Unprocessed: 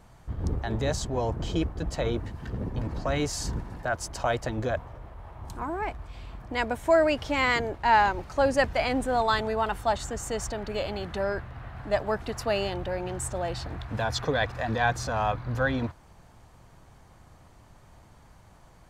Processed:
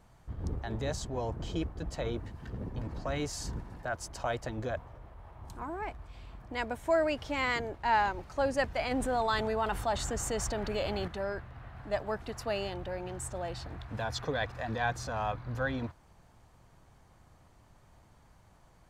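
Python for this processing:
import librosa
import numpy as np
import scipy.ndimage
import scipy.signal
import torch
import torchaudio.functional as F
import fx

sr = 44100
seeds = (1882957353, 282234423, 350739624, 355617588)

y = fx.env_flatten(x, sr, amount_pct=50, at=(8.91, 11.08))
y = y * librosa.db_to_amplitude(-6.5)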